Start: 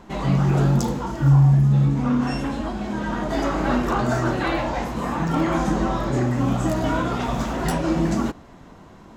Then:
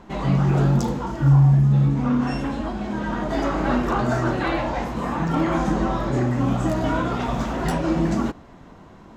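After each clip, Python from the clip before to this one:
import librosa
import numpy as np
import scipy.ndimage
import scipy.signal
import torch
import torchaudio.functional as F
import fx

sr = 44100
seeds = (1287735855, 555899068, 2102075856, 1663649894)

y = fx.high_shelf(x, sr, hz=6000.0, db=-7.0)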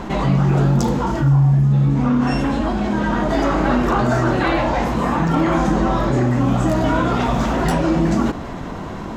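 y = fx.env_flatten(x, sr, amount_pct=50)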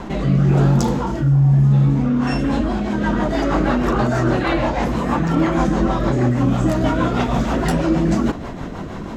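y = fx.rotary_switch(x, sr, hz=1.0, then_hz=6.3, switch_at_s=1.88)
y = y * librosa.db_to_amplitude(1.5)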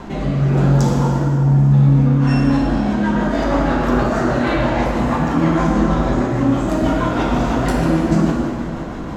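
y = fx.rev_plate(x, sr, seeds[0], rt60_s=2.6, hf_ratio=0.65, predelay_ms=0, drr_db=-2.0)
y = y * librosa.db_to_amplitude(-3.0)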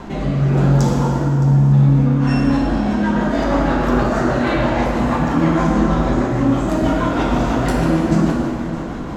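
y = x + 10.0 ** (-16.0 / 20.0) * np.pad(x, (int(616 * sr / 1000.0), 0))[:len(x)]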